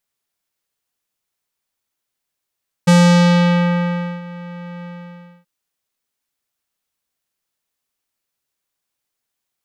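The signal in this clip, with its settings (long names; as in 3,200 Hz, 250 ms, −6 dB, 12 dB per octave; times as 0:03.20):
subtractive voice square F3 12 dB per octave, low-pass 2,300 Hz, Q 1.1, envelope 2 octaves, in 0.83 s, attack 12 ms, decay 1.33 s, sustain −22.5 dB, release 0.61 s, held 1.97 s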